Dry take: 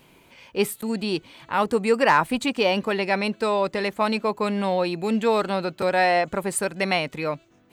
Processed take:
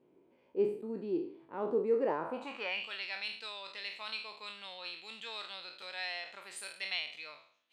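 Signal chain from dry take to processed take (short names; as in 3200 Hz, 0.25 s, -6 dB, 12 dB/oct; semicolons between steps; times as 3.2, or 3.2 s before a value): spectral trails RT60 0.54 s; band-pass sweep 370 Hz -> 3500 Hz, 2.19–2.9; gain -6.5 dB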